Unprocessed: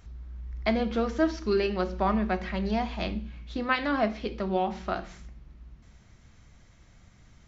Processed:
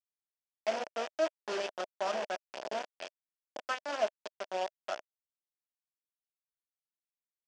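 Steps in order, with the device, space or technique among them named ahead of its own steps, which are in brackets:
dynamic equaliser 1,300 Hz, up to +7 dB, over −49 dBFS, Q 5.6
hand-held game console (bit reduction 4 bits; loudspeaker in its box 500–5,600 Hz, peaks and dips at 620 Hz +9 dB, 1,200 Hz −7 dB, 2,100 Hz −6 dB, 4,000 Hz −9 dB)
level −8.5 dB

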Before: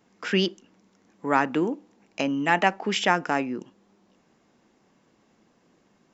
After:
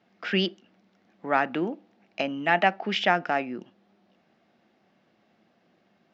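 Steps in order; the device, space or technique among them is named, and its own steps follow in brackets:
guitar cabinet (loudspeaker in its box 110–4,500 Hz, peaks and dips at 140 Hz −5 dB, 280 Hz −6 dB, 450 Hz −6 dB, 680 Hz +5 dB, 1,000 Hz −8 dB)

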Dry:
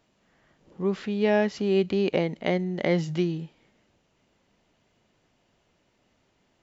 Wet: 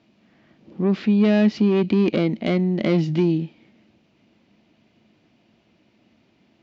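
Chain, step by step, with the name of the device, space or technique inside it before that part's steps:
guitar amplifier (tube saturation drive 23 dB, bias 0.3; bass and treble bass +6 dB, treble +9 dB; loudspeaker in its box 87–4,600 Hz, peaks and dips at 220 Hz +9 dB, 320 Hz +9 dB, 670 Hz +4 dB, 2,400 Hz +6 dB)
level +2.5 dB

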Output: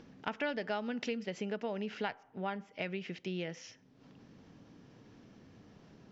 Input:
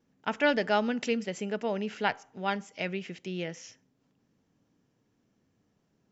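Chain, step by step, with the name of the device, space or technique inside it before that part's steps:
low-pass filter 5,500 Hz 24 dB per octave
0:02.14–0:02.82: parametric band 6,500 Hz −11 dB 1.9 octaves
upward and downward compression (upward compression, threshold −43 dBFS; downward compressor 4 to 1, threshold −34 dBFS, peak gain reduction 12 dB)

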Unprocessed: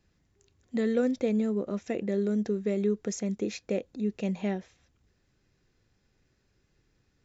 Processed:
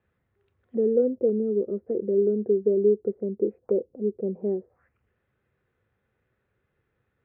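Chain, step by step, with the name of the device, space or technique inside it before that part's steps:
envelope filter bass rig (envelope-controlled low-pass 390–3,800 Hz down, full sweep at −31.5 dBFS; loudspeaker in its box 75–2,000 Hz, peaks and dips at 170 Hz −6 dB, 290 Hz −8 dB, 500 Hz +5 dB, 1,300 Hz +4 dB)
0:01.29–0:02.22: dynamic equaliser 800 Hz, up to −4 dB, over −35 dBFS, Q 1.1
level −1.5 dB

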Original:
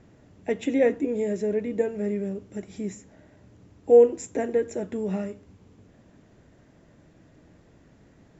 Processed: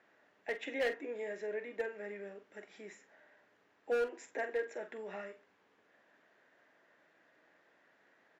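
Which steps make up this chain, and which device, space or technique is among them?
megaphone (band-pass filter 670–3,900 Hz; parametric band 1,700 Hz +7 dB 0.58 octaves; hard clipping −22.5 dBFS, distortion −9 dB; double-tracking delay 45 ms −11 dB)
level −5.5 dB

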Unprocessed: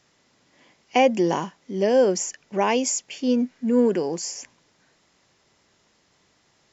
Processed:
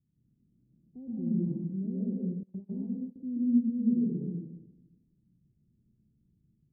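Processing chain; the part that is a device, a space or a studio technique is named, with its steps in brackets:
club heard from the street (brickwall limiter −15.5 dBFS, peak gain reduction 8.5 dB; low-pass filter 210 Hz 24 dB per octave; convolution reverb RT60 1.0 s, pre-delay 110 ms, DRR −6.5 dB)
0:02.43–0:03.16: noise gate −35 dBFS, range −21 dB
level −4 dB

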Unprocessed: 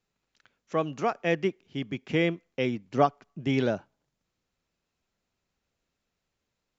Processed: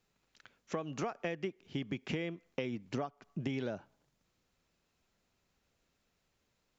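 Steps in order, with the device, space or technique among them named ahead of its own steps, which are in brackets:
serial compression, peaks first (downward compressor 6 to 1, threshold −31 dBFS, peak gain reduction 14.5 dB; downward compressor 2.5 to 1, threshold −39 dBFS, peak gain reduction 8 dB)
level +3.5 dB

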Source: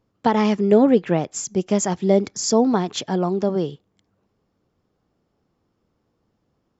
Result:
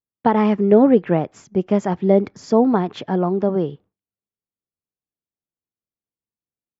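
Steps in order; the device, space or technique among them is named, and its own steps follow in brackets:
hearing-loss simulation (low-pass filter 2,100 Hz 12 dB per octave; downward expander −42 dBFS)
level +2 dB

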